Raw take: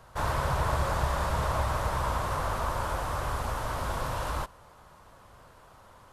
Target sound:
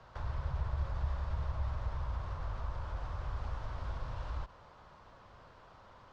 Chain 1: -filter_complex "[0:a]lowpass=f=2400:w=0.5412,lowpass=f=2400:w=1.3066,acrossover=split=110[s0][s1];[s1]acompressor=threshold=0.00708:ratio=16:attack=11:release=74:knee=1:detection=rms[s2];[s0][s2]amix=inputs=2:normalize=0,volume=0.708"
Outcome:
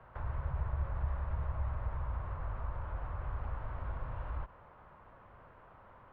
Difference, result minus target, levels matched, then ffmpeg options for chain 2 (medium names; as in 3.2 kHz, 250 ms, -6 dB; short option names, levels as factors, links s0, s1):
4 kHz band -11.5 dB
-filter_complex "[0:a]lowpass=f=5400:w=0.5412,lowpass=f=5400:w=1.3066,acrossover=split=110[s0][s1];[s1]acompressor=threshold=0.00708:ratio=16:attack=11:release=74:knee=1:detection=rms[s2];[s0][s2]amix=inputs=2:normalize=0,volume=0.708"